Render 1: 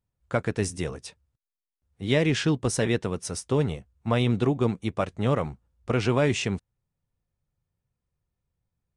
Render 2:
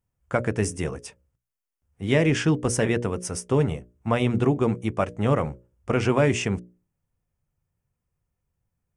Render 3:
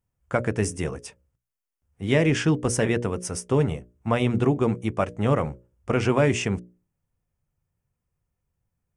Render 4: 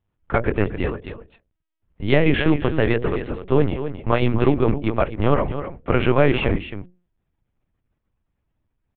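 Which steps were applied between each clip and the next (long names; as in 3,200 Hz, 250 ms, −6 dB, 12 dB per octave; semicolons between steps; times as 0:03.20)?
parametric band 4,000 Hz −13.5 dB 0.41 octaves; mains-hum notches 60/120/180/240/300/360/420/480/540/600 Hz; level +3 dB
no processing that can be heard
single-tap delay 261 ms −10.5 dB; linear-prediction vocoder at 8 kHz pitch kept; level +4.5 dB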